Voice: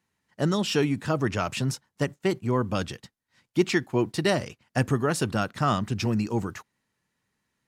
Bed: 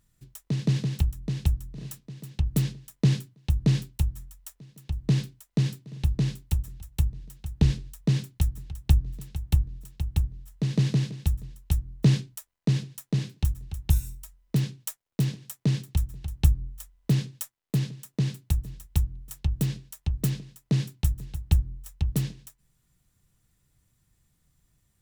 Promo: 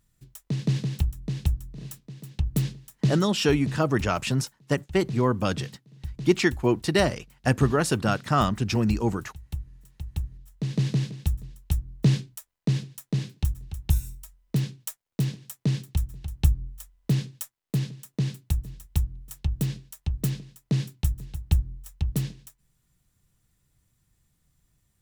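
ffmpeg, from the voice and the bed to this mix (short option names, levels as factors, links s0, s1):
-filter_complex "[0:a]adelay=2700,volume=1.26[s0];[1:a]volume=3.16,afade=t=out:st=2.96:d=0.47:silence=0.298538,afade=t=in:st=9.65:d=1.37:silence=0.298538[s1];[s0][s1]amix=inputs=2:normalize=0"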